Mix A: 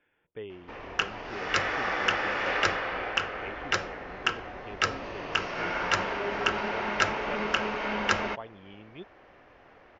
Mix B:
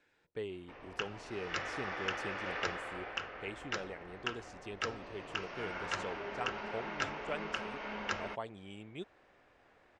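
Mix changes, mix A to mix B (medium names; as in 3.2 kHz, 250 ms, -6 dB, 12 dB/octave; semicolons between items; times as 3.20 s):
speech: remove brick-wall FIR low-pass 3.6 kHz; background -11.0 dB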